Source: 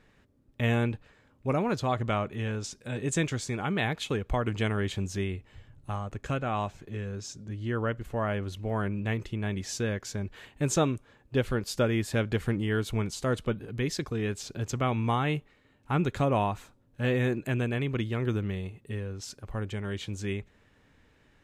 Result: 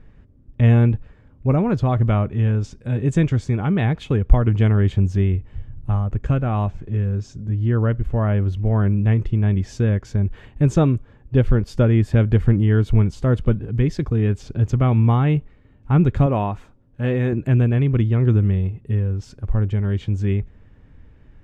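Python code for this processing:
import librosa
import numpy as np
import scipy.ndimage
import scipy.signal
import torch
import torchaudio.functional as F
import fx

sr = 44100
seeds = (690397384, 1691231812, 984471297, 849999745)

y = fx.low_shelf(x, sr, hz=150.0, db=-11.5, at=(16.26, 17.33))
y = fx.riaa(y, sr, side='playback')
y = fx.notch(y, sr, hz=4000.0, q=17.0)
y = F.gain(torch.from_numpy(y), 3.0).numpy()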